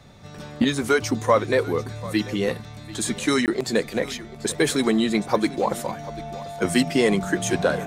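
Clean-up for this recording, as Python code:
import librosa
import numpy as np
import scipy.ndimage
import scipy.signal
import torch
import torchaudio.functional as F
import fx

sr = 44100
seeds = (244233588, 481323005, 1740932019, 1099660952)

y = fx.notch(x, sr, hz=690.0, q=30.0)
y = fx.fix_interpolate(y, sr, at_s=(3.46,), length_ms=18.0)
y = fx.fix_echo_inverse(y, sr, delay_ms=741, level_db=-18.0)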